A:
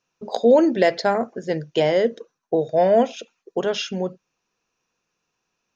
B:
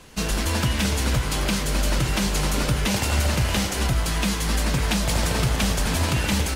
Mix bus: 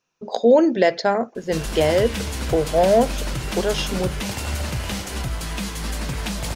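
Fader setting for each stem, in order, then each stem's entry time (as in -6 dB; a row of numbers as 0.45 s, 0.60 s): +0.5 dB, -4.5 dB; 0.00 s, 1.35 s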